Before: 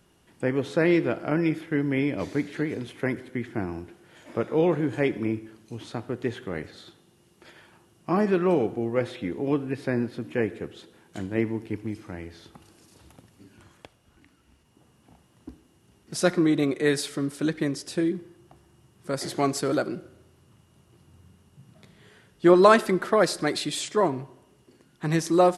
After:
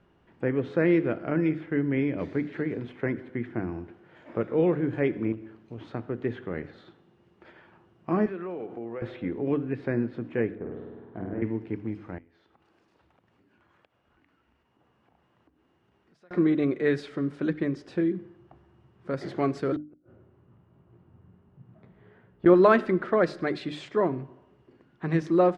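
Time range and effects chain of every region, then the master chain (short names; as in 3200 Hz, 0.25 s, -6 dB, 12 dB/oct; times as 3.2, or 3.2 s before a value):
5.32–5.78 compressor 2:1, threshold -35 dBFS + overloaded stage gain 28.5 dB + Doppler distortion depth 0.2 ms
8.26–9.02 HPF 380 Hz 6 dB/oct + compressor 4:1, threshold -32 dBFS
10.55–11.42 LPF 1200 Hz + compressor, threshold -29 dBFS + flutter echo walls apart 8.7 m, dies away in 1.4 s
12.18–16.31 compressor 5:1, threshold -55 dBFS + low shelf 370 Hz -9.5 dB
19.76–22.46 LPF 1200 Hz 6 dB/oct + doubler 17 ms -9 dB + flipped gate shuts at -22 dBFS, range -39 dB
whole clip: LPF 2000 Hz 12 dB/oct; notches 50/100/150/200/250/300 Hz; dynamic EQ 860 Hz, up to -6 dB, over -41 dBFS, Q 1.5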